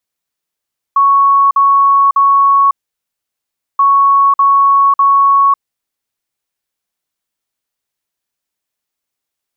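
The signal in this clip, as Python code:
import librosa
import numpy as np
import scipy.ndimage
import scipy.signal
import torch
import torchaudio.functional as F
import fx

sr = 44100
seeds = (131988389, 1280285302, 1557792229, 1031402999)

y = fx.beep_pattern(sr, wave='sine', hz=1110.0, on_s=0.55, off_s=0.05, beeps=3, pause_s=1.08, groups=2, level_db=-5.5)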